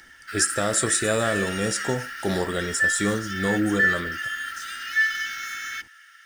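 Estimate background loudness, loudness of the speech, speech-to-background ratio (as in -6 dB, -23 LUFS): -27.0 LUFS, -25.5 LUFS, 1.5 dB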